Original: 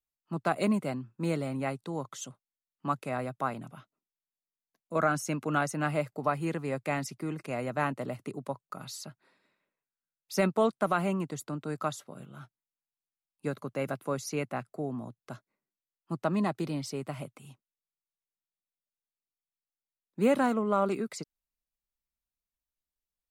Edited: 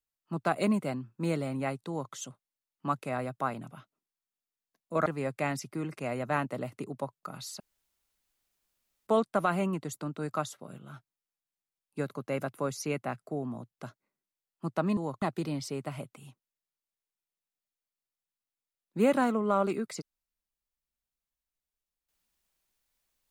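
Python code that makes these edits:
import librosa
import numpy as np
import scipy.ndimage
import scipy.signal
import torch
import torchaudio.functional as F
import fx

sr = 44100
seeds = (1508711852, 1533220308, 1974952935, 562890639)

y = fx.edit(x, sr, fx.duplicate(start_s=1.88, length_s=0.25, to_s=16.44),
    fx.cut(start_s=5.06, length_s=1.47),
    fx.room_tone_fill(start_s=9.07, length_s=1.47), tone=tone)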